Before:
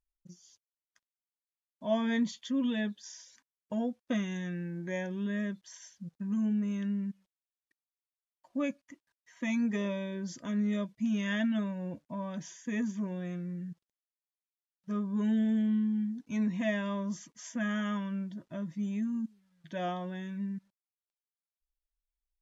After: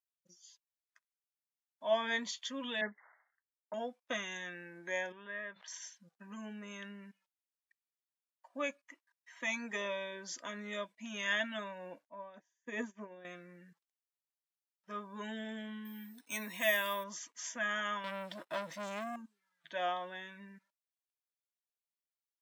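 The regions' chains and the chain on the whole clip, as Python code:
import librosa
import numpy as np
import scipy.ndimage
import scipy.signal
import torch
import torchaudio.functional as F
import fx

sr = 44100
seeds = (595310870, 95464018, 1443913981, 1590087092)

y = fx.chain(x, sr, fx.sample_sort(block=8),
    fx.brickwall_lowpass(high_hz=2200.0),
    fx.band_widen(depth_pct=100), at=(2.81, 3.74))
y = fx.chain(y, sr, fx.lowpass(hz=2000.0, slope=12),
    fx.peak_eq(hz=270.0, db=-11.0, octaves=1.3),
    fx.sustainer(db_per_s=110.0), at=(5.12, 5.68))
y = fx.chain(y, sr, fx.peak_eq(hz=360.0, db=8.5, octaves=2.3),
    fx.upward_expand(threshold_db=-42.0, expansion=2.5), at=(12.06, 13.25))
y = fx.chain(y, sr, fx.high_shelf(hz=3400.0, db=11.5),
    fx.resample_bad(factor=3, down='filtered', up='hold'), at=(15.85, 17.04))
y = fx.chain(y, sr, fx.highpass(hz=67.0, slope=6),
    fx.peak_eq(hz=260.0, db=-4.0, octaves=0.24),
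    fx.leveller(passes=3), at=(18.04, 19.16))
y = fx.noise_reduce_blind(y, sr, reduce_db=9)
y = scipy.signal.sosfilt(scipy.signal.butter(2, 700.0, 'highpass', fs=sr, output='sos'), y)
y = y * librosa.db_to_amplitude(3.5)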